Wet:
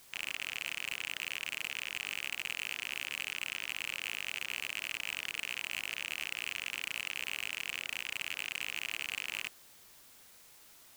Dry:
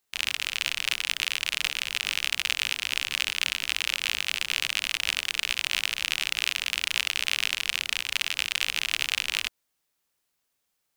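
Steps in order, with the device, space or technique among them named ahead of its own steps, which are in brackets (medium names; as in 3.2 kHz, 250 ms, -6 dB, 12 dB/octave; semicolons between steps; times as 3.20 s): aircraft radio (band-pass 380–2500 Hz; hard clipper -25 dBFS, distortion -6 dB; white noise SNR 18 dB)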